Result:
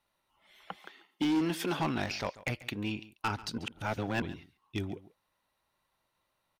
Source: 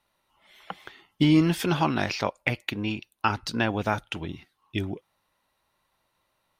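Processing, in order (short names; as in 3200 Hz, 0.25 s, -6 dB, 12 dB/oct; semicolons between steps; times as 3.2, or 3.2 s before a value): 0.75–1.8 HPF 200 Hz 24 dB/oct; hard clip -19.5 dBFS, distortion -11 dB; 3.58–4.22 reverse; echo 0.14 s -18 dB; gain -5.5 dB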